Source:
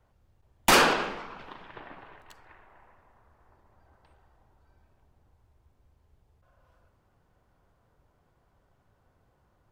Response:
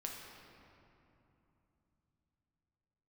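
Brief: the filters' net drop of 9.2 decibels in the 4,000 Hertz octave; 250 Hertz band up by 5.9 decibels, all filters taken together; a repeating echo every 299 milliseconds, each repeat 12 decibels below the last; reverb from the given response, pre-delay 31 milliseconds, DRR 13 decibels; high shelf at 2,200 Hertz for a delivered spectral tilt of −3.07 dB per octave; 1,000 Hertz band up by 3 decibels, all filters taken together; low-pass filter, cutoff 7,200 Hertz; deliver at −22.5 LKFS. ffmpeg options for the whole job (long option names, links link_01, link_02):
-filter_complex "[0:a]lowpass=7200,equalizer=frequency=250:width_type=o:gain=7.5,equalizer=frequency=1000:width_type=o:gain=5,highshelf=frequency=2200:gain=-6,equalizer=frequency=4000:width_type=o:gain=-7,aecho=1:1:299|598|897:0.251|0.0628|0.0157,asplit=2[link_01][link_02];[1:a]atrim=start_sample=2205,adelay=31[link_03];[link_02][link_03]afir=irnorm=-1:irlink=0,volume=-12dB[link_04];[link_01][link_04]amix=inputs=2:normalize=0,volume=2dB"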